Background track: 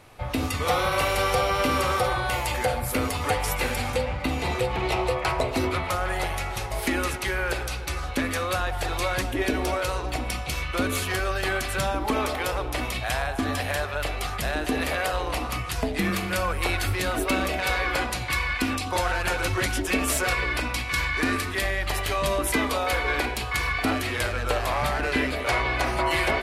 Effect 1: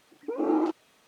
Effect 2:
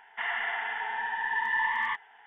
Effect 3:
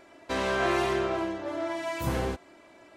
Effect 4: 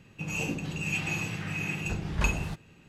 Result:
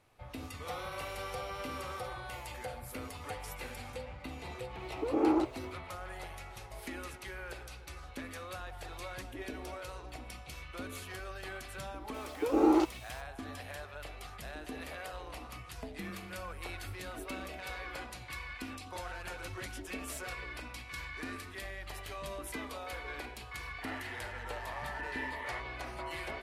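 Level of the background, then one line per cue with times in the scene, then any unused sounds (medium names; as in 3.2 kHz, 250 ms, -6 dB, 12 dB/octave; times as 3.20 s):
background track -17 dB
4.74 s: add 1 -2.5 dB, fades 0.10 s
12.14 s: add 1 + treble shelf 3.4 kHz +12 dB
23.64 s: add 2 -13.5 dB
not used: 3, 4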